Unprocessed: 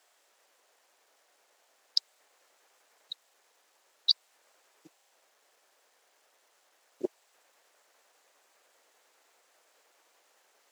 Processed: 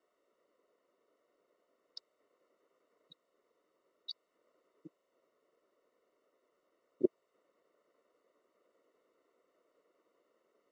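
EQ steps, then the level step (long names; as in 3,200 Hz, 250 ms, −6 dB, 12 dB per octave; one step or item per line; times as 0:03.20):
moving average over 54 samples
+6.5 dB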